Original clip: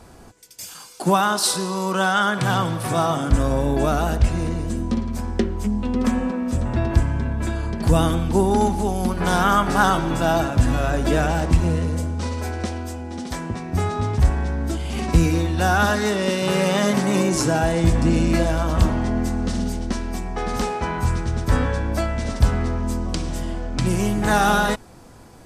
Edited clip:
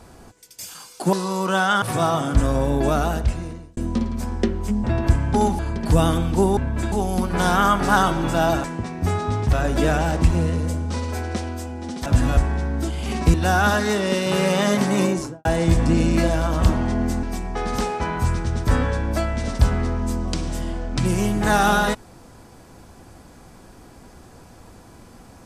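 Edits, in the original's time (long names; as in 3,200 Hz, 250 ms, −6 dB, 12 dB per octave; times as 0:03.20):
0:01.13–0:01.59: remove
0:02.28–0:02.78: remove
0:03.97–0:04.73: fade out
0:05.80–0:06.71: remove
0:07.21–0:07.56: swap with 0:08.54–0:08.79
0:10.51–0:10.82: swap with 0:13.35–0:14.24
0:15.21–0:15.50: remove
0:17.17–0:17.61: fade out and dull
0:19.39–0:20.04: remove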